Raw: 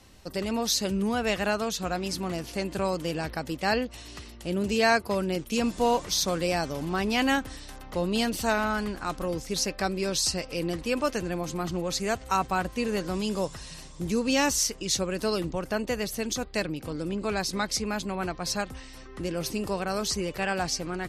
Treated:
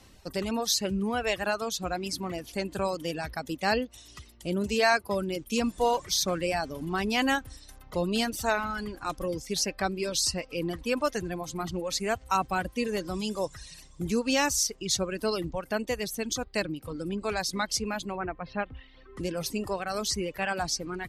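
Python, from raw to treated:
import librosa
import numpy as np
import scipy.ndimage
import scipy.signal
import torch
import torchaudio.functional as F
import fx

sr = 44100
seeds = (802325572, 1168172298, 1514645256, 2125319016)

y = fx.lowpass(x, sr, hz=fx.line((18.16, 2200.0), (19.16, 4100.0)), slope=24, at=(18.16, 19.16), fade=0.02)
y = fx.dereverb_blind(y, sr, rt60_s=1.9)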